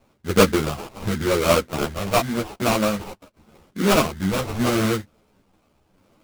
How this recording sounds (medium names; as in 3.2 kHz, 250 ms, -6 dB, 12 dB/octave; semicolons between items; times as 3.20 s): phasing stages 12, 0.84 Hz, lowest notch 310–3200 Hz; aliases and images of a low sample rate 1.8 kHz, jitter 20%; tremolo saw down 0.67 Hz, depth 35%; a shimmering, thickened sound